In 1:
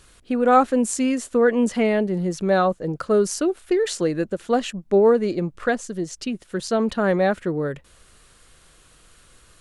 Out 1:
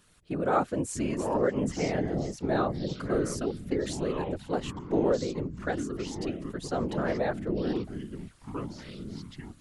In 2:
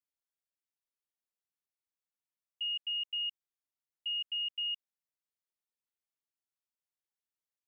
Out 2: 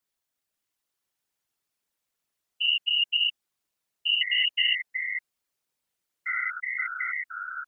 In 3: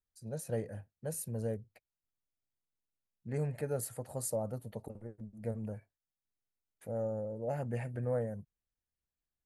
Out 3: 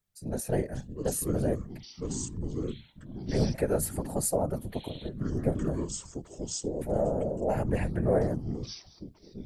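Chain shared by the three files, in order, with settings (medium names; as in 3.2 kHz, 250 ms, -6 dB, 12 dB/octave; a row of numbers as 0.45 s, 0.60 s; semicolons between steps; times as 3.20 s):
ever faster or slower copies 524 ms, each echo -6 st, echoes 3, each echo -6 dB; whisper effect; peak normalisation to -12 dBFS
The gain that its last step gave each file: -10.0 dB, +10.0 dB, +8.0 dB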